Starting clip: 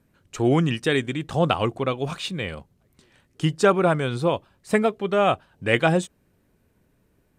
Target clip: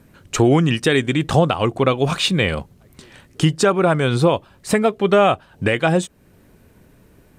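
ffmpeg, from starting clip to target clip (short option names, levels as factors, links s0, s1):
-filter_complex "[0:a]asplit=2[s0][s1];[s1]acompressor=threshold=0.0316:ratio=6,volume=0.944[s2];[s0][s2]amix=inputs=2:normalize=0,alimiter=limit=0.224:level=0:latency=1:release=470,volume=2.51"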